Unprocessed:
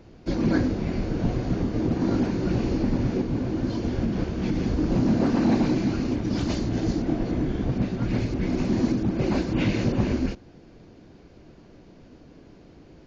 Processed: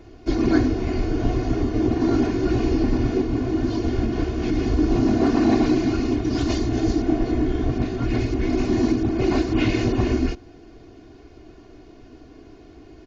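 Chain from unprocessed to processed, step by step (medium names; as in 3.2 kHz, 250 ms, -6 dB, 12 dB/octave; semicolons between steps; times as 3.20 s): comb 2.8 ms, depth 76%; trim +2 dB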